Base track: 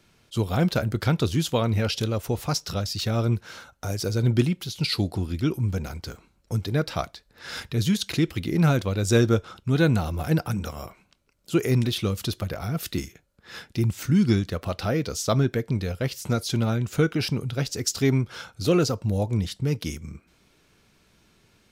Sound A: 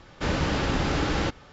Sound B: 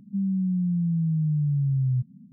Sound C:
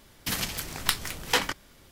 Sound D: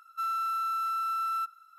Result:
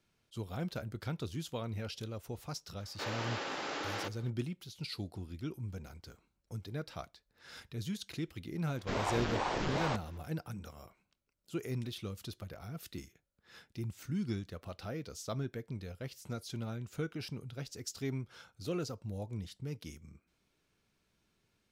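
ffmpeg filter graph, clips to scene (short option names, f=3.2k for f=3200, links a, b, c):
-filter_complex "[1:a]asplit=2[a][b];[0:a]volume=-16dB[c];[a]highpass=450[d];[b]aeval=exprs='val(0)*sin(2*PI*480*n/s+480*0.85/2.5*sin(2*PI*2.5*n/s))':c=same[e];[d]atrim=end=1.52,asetpts=PTS-STARTPTS,volume=-9dB,afade=t=in:d=0.004:c=hsin,afade=t=out:st=1.516:d=0.004:c=hsin,adelay=2780[f];[e]atrim=end=1.52,asetpts=PTS-STARTPTS,volume=-6.5dB,afade=t=in:d=0.004:c=hsin,afade=t=out:st=1.516:d=0.004:c=hsin,adelay=381906S[g];[c][f][g]amix=inputs=3:normalize=0"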